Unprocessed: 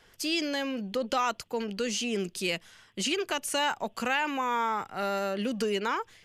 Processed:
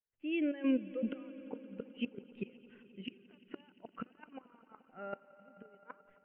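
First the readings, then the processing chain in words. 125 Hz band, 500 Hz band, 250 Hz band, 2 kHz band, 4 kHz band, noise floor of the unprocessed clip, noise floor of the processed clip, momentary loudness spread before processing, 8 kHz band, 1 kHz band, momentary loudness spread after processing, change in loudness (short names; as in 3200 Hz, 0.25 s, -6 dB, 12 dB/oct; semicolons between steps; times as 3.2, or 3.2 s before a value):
-12.0 dB, -13.0 dB, -4.0 dB, -18.0 dB, -22.5 dB, -60 dBFS, -70 dBFS, 5 LU, under -40 dB, -24.0 dB, 23 LU, -9.5 dB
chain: steep low-pass 2900 Hz 48 dB/oct; dynamic EQ 890 Hz, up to -4 dB, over -44 dBFS, Q 2.4; AGC gain up to 10 dB; step gate ".xxx.x..xxxxx.xx" 117 bpm -12 dB; flipped gate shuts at -14 dBFS, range -29 dB; soft clip -15.5 dBFS, distortion -22 dB; swelling echo 87 ms, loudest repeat 5, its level -17 dB; spectral expander 1.5:1; gain -5 dB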